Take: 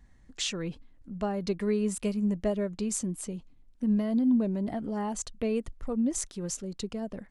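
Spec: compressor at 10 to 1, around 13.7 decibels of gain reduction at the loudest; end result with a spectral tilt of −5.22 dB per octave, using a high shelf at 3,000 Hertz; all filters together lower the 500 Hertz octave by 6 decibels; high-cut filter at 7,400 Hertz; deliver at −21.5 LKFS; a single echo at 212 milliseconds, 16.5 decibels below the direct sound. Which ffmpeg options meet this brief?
ffmpeg -i in.wav -af "lowpass=7400,equalizer=frequency=500:width_type=o:gain=-7.5,highshelf=frequency=3000:gain=-8,acompressor=threshold=-37dB:ratio=10,aecho=1:1:212:0.15,volume=20.5dB" out.wav

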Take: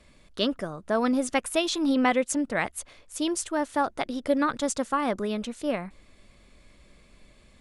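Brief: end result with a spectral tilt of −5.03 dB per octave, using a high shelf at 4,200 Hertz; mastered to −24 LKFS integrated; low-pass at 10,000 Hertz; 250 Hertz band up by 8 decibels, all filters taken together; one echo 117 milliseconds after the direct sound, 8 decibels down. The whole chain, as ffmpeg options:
ffmpeg -i in.wav -af "lowpass=10000,equalizer=frequency=250:width_type=o:gain=9,highshelf=frequency=4200:gain=-3.5,aecho=1:1:117:0.398,volume=-2.5dB" out.wav

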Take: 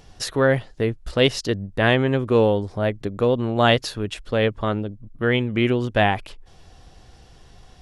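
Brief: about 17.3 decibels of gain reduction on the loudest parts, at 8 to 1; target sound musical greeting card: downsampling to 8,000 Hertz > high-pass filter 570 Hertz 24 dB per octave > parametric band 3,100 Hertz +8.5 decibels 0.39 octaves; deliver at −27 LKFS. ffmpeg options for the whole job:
ffmpeg -i in.wav -af "acompressor=threshold=-31dB:ratio=8,aresample=8000,aresample=44100,highpass=frequency=570:width=0.5412,highpass=frequency=570:width=1.3066,equalizer=frequency=3100:width_type=o:width=0.39:gain=8.5,volume=12.5dB" out.wav

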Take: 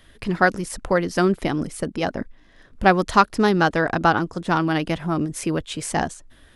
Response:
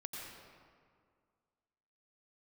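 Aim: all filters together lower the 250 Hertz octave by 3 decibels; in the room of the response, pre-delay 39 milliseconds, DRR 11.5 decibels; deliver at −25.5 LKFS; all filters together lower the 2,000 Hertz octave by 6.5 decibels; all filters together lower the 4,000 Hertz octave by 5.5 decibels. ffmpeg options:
-filter_complex "[0:a]equalizer=frequency=250:width_type=o:gain=-4.5,equalizer=frequency=2000:width_type=o:gain=-9,equalizer=frequency=4000:width_type=o:gain=-4,asplit=2[link_01][link_02];[1:a]atrim=start_sample=2205,adelay=39[link_03];[link_02][link_03]afir=irnorm=-1:irlink=0,volume=-10dB[link_04];[link_01][link_04]amix=inputs=2:normalize=0,volume=-1.5dB"

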